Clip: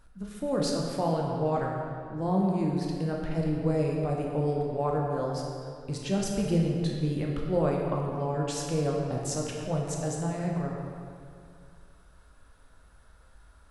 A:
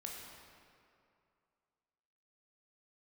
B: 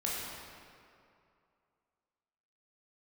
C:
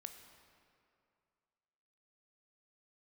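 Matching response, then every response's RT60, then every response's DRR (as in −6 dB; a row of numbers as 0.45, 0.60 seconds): A; 2.5, 2.5, 2.4 seconds; −1.5, −6.0, 6.0 decibels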